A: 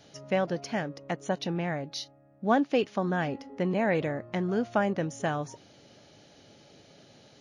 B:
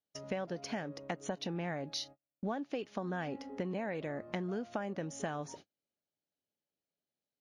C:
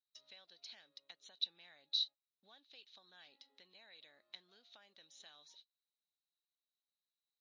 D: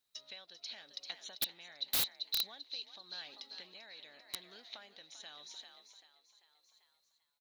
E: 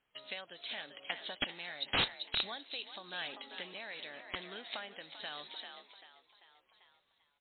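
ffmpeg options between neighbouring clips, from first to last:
-af "agate=range=0.00891:threshold=0.00398:ratio=16:detection=peak,equalizer=f=120:t=o:w=0.27:g=-12.5,acompressor=threshold=0.02:ratio=10"
-af "bandpass=f=3900:t=q:w=18:csg=0,volume=3.55"
-filter_complex "[0:a]asplit=2[s0][s1];[s1]asplit=6[s2][s3][s4][s5][s6][s7];[s2]adelay=392,afreqshift=54,volume=0.335[s8];[s3]adelay=784,afreqshift=108,volume=0.174[s9];[s4]adelay=1176,afreqshift=162,volume=0.0902[s10];[s5]adelay=1568,afreqshift=216,volume=0.0473[s11];[s6]adelay=1960,afreqshift=270,volume=0.0245[s12];[s7]adelay=2352,afreqshift=324,volume=0.0127[s13];[s8][s9][s10][s11][s12][s13]amix=inputs=6:normalize=0[s14];[s0][s14]amix=inputs=2:normalize=0,tremolo=f=0.88:d=0.42,aeval=exprs='(mod(70.8*val(0)+1,2)-1)/70.8':c=same,volume=3.76"
-af "volume=3.55" -ar 8000 -c:a libmp3lame -b:a 24k

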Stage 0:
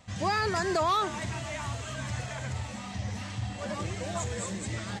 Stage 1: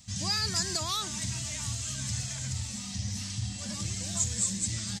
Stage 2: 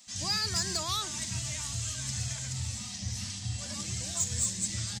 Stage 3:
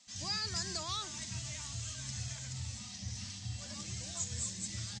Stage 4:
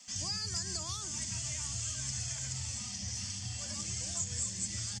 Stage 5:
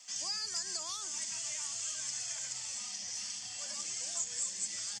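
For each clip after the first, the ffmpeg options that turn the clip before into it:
-af "firequalizer=gain_entry='entry(210,0);entry(400,-15);entry(5000,11)':delay=0.05:min_phase=1"
-filter_complex "[0:a]bandreject=f=50:t=h:w=6,bandreject=f=100:t=h:w=6,bandreject=f=150:t=h:w=6,bandreject=f=200:t=h:w=6,asoftclip=type=tanh:threshold=0.119,acrossover=split=240[s0][s1];[s0]adelay=70[s2];[s2][s1]amix=inputs=2:normalize=0"
-af "lowpass=f=7600:w=0.5412,lowpass=f=7600:w=1.3066,volume=0.501"
-filter_complex "[0:a]acrossover=split=110|310|5400[s0][s1][s2][s3];[s0]acompressor=threshold=0.00282:ratio=4[s4];[s1]acompressor=threshold=0.00141:ratio=4[s5];[s2]acompressor=threshold=0.00224:ratio=4[s6];[s3]acompressor=threshold=0.00562:ratio=4[s7];[s4][s5][s6][s7]amix=inputs=4:normalize=0,highshelf=f=9100:g=6.5,bandreject=f=3900:w=5.8,volume=2.24"
-af "highpass=480"

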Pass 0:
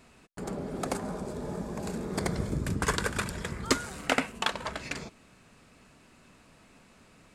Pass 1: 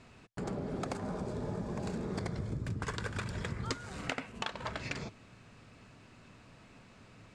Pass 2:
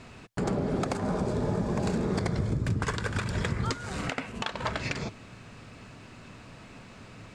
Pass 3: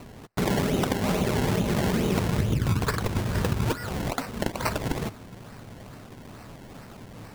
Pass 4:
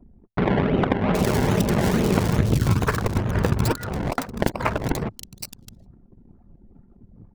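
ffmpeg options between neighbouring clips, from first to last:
-af "lowpass=6200,equalizer=f=110:t=o:w=0.47:g=10,acompressor=threshold=0.0224:ratio=10"
-af "alimiter=level_in=1.19:limit=0.0631:level=0:latency=1:release=188,volume=0.841,volume=2.82"
-af "acrusher=samples=25:mix=1:aa=0.000001:lfo=1:lforange=25:lforate=2.3,volume=1.58"
-filter_complex "[0:a]acrossover=split=3300[s0][s1];[s1]adelay=770[s2];[s0][s2]amix=inputs=2:normalize=0,anlmdn=6.31,aeval=exprs='0.266*(cos(1*acos(clip(val(0)/0.266,-1,1)))-cos(1*PI/2))+0.0335*(cos(3*acos(clip(val(0)/0.266,-1,1)))-cos(3*PI/2))':c=same,volume=2.37"

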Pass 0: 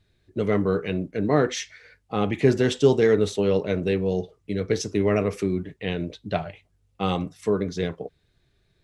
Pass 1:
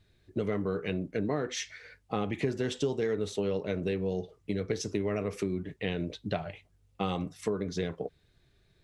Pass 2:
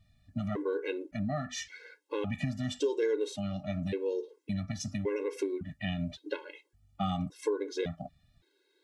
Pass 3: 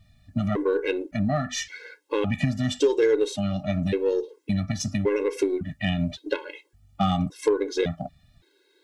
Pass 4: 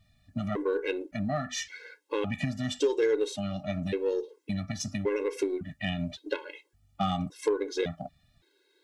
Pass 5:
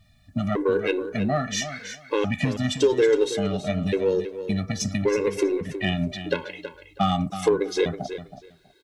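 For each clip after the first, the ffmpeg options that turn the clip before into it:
-af "acompressor=threshold=0.0398:ratio=5"
-af "afftfilt=real='re*gt(sin(2*PI*0.89*pts/sr)*(1-2*mod(floor(b*sr/1024/280),2)),0)':imag='im*gt(sin(2*PI*0.89*pts/sr)*(1-2*mod(floor(b*sr/1024/280),2)),0)':win_size=1024:overlap=0.75,volume=1.19"
-af "aeval=exprs='0.126*(cos(1*acos(clip(val(0)/0.126,-1,1)))-cos(1*PI/2))+0.00631*(cos(4*acos(clip(val(0)/0.126,-1,1)))-cos(4*PI/2))+0.01*(cos(6*acos(clip(val(0)/0.126,-1,1)))-cos(6*PI/2))+0.00158*(cos(7*acos(clip(val(0)/0.126,-1,1)))-cos(7*PI/2))+0.00562*(cos(8*acos(clip(val(0)/0.126,-1,1)))-cos(8*PI/2))':c=same,volume=2.82"
-af "lowshelf=f=230:g=-5,volume=0.631"
-af "aecho=1:1:323|646:0.282|0.0479,volume=2.11"

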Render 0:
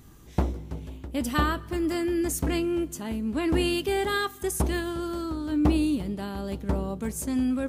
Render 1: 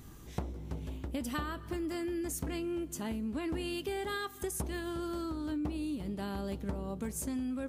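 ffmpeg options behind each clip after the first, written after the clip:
-af "acompressor=threshold=0.02:ratio=6"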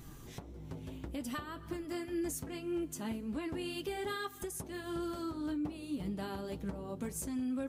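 -af "alimiter=level_in=2:limit=0.0631:level=0:latency=1:release=468,volume=0.501,flanger=delay=5.7:depth=2.8:regen=-32:speed=1.8:shape=triangular,volume=1.68"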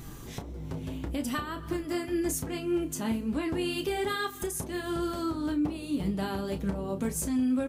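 -filter_complex "[0:a]asplit=2[s0][s1];[s1]adelay=31,volume=0.316[s2];[s0][s2]amix=inputs=2:normalize=0,volume=2.37"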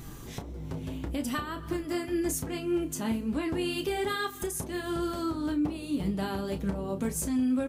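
-af anull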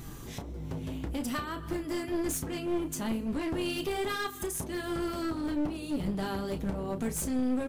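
-af "aeval=exprs='clip(val(0),-1,0.0251)':c=same"

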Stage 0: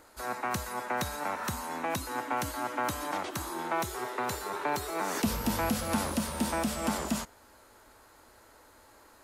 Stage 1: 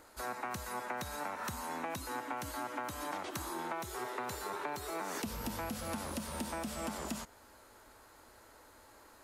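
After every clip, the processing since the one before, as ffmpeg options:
-af "acompressor=threshold=0.02:ratio=10,volume=0.841"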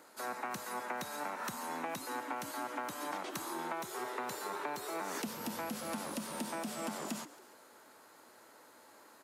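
-filter_complex "[0:a]highpass=f=150:w=0.5412,highpass=f=150:w=1.3066,asplit=5[s0][s1][s2][s3][s4];[s1]adelay=138,afreqshift=76,volume=0.141[s5];[s2]adelay=276,afreqshift=152,volume=0.0724[s6];[s3]adelay=414,afreqshift=228,volume=0.0367[s7];[s4]adelay=552,afreqshift=304,volume=0.0188[s8];[s0][s5][s6][s7][s8]amix=inputs=5:normalize=0"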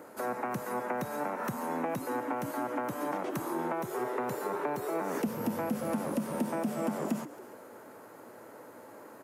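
-filter_complex "[0:a]equalizer=f=125:t=o:w=1:g=11,equalizer=f=250:t=o:w=1:g=4,equalizer=f=500:t=o:w=1:g=7,equalizer=f=4000:t=o:w=1:g=-10,equalizer=f=8000:t=o:w=1:g=-5,asplit=2[s0][s1];[s1]acompressor=threshold=0.00708:ratio=6,volume=1[s2];[s0][s2]amix=inputs=2:normalize=0"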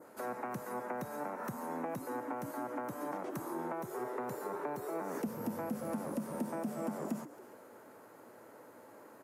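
-af "adynamicequalizer=threshold=0.00126:dfrequency=3000:dqfactor=1.3:tfrequency=3000:tqfactor=1.3:attack=5:release=100:ratio=0.375:range=3:mode=cutabove:tftype=bell,volume=0.531"

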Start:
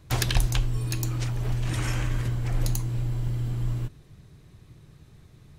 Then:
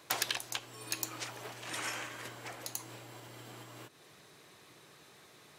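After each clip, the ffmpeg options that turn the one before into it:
-af "acompressor=threshold=0.0224:ratio=6,highpass=530,volume=2.11"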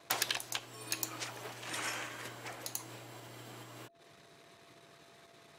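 -af "anlmdn=0.0001,aeval=exprs='val(0)+0.000631*sin(2*PI*680*n/s)':c=same"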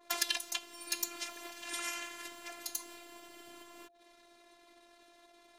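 -af "afftfilt=real='hypot(re,im)*cos(PI*b)':imag='0':win_size=512:overlap=0.75,adynamicequalizer=threshold=0.002:dfrequency=1800:dqfactor=0.7:tfrequency=1800:tqfactor=0.7:attack=5:release=100:ratio=0.375:range=2.5:mode=boostabove:tftype=highshelf"

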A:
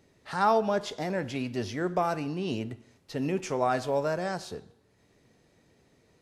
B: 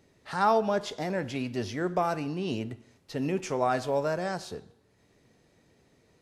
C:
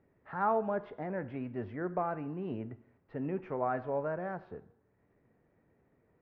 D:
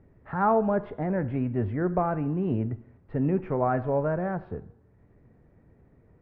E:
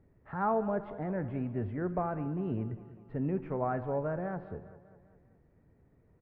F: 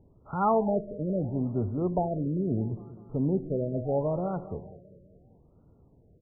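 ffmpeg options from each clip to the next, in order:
-af anull
-af "lowpass=f=1900:w=0.5412,lowpass=f=1900:w=1.3066,volume=0.501"
-af "aemphasis=mode=reproduction:type=bsi,volume=2"
-af "aecho=1:1:200|400|600|800|1000:0.158|0.0872|0.0479|0.0264|0.0145,volume=0.447"
-af "afftfilt=real='re*lt(b*sr/1024,620*pow(1500/620,0.5+0.5*sin(2*PI*0.75*pts/sr)))':imag='im*lt(b*sr/1024,620*pow(1500/620,0.5+0.5*sin(2*PI*0.75*pts/sr)))':win_size=1024:overlap=0.75,volume=1.88"

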